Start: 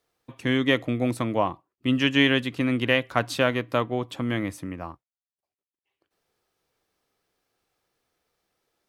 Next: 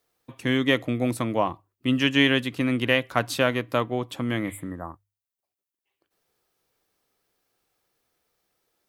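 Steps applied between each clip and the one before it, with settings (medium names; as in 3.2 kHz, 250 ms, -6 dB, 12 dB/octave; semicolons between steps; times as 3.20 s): spectral replace 4.49–4.98 s, 2–7 kHz both; treble shelf 10 kHz +9 dB; hum notches 50/100 Hz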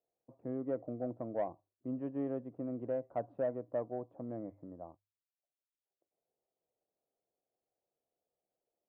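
four-pole ladder low-pass 740 Hz, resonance 55%; bass shelf 79 Hz -8.5 dB; saturation -19 dBFS, distortion -22 dB; trim -5.5 dB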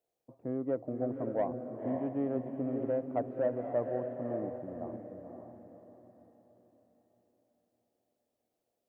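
echo that smears into a reverb 539 ms, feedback 40%, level -5 dB; trim +3.5 dB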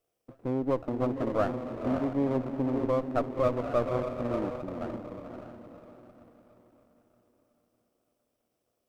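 comb filter that takes the minimum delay 0.36 ms; trim +5.5 dB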